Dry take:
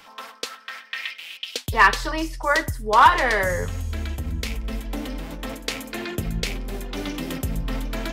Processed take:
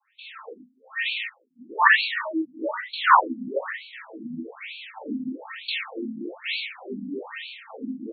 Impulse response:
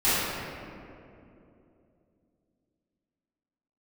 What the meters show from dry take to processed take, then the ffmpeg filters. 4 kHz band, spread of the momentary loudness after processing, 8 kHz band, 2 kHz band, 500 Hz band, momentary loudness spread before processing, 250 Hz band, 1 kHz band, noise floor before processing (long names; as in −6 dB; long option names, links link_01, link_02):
−1.0 dB, 20 LU, below −40 dB, −1.0 dB, −5.5 dB, 16 LU, −1.0 dB, −3.5 dB, −48 dBFS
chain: -filter_complex "[0:a]aemphasis=mode=production:type=75fm,agate=range=-16dB:threshold=-34dB:ratio=16:detection=peak,equalizer=frequency=260:width=4.1:gain=4,acrossover=split=170|580|6500[link_01][link_02][link_03][link_04];[link_01]alimiter=level_in=5dB:limit=-24dB:level=0:latency=1:release=259,volume=-5dB[link_05];[link_03]asplit=7[link_06][link_07][link_08][link_09][link_10][link_11][link_12];[link_07]adelay=120,afreqshift=41,volume=-16dB[link_13];[link_08]adelay=240,afreqshift=82,volume=-20.4dB[link_14];[link_09]adelay=360,afreqshift=123,volume=-24.9dB[link_15];[link_10]adelay=480,afreqshift=164,volume=-29.3dB[link_16];[link_11]adelay=600,afreqshift=205,volume=-33.7dB[link_17];[link_12]adelay=720,afreqshift=246,volume=-38.2dB[link_18];[link_06][link_13][link_14][link_15][link_16][link_17][link_18]amix=inputs=7:normalize=0[link_19];[link_05][link_02][link_19][link_04]amix=inputs=4:normalize=0[link_20];[1:a]atrim=start_sample=2205,afade=type=out:start_time=0.27:duration=0.01,atrim=end_sample=12348[link_21];[link_20][link_21]afir=irnorm=-1:irlink=0,afftfilt=real='re*between(b*sr/1024,200*pow(3200/200,0.5+0.5*sin(2*PI*1.1*pts/sr))/1.41,200*pow(3200/200,0.5+0.5*sin(2*PI*1.1*pts/sr))*1.41)':imag='im*between(b*sr/1024,200*pow(3200/200,0.5+0.5*sin(2*PI*1.1*pts/sr))/1.41,200*pow(3200/200,0.5+0.5*sin(2*PI*1.1*pts/sr))*1.41)':win_size=1024:overlap=0.75,volume=-13dB"